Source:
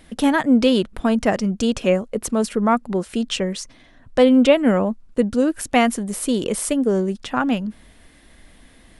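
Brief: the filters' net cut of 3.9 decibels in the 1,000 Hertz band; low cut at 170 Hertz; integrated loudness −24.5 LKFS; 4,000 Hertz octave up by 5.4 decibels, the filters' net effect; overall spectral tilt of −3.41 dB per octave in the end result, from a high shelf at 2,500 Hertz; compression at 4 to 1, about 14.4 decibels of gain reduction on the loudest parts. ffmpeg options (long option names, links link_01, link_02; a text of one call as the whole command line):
ffmpeg -i in.wav -af "highpass=170,equalizer=frequency=1000:width_type=o:gain=-6.5,highshelf=frequency=2500:gain=3.5,equalizer=frequency=4000:width_type=o:gain=5,acompressor=threshold=-29dB:ratio=4,volume=6.5dB" out.wav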